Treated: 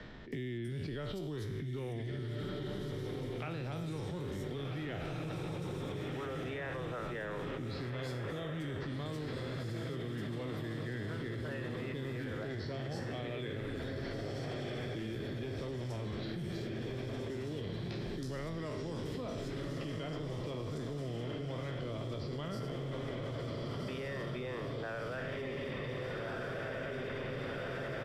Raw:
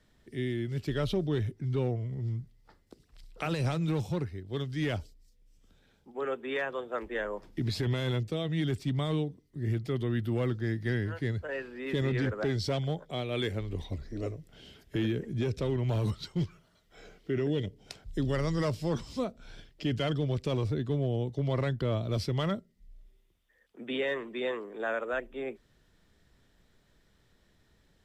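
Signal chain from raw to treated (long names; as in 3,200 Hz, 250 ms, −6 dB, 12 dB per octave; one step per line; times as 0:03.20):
peak hold with a decay on every bin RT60 0.63 s
on a send: feedback delay with all-pass diffusion 1,517 ms, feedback 58%, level −4 dB
on the sum: output level in coarse steps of 23 dB
multiband delay without the direct sound lows, highs 320 ms, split 4,700 Hz
multiband upward and downward compressor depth 70%
level +6.5 dB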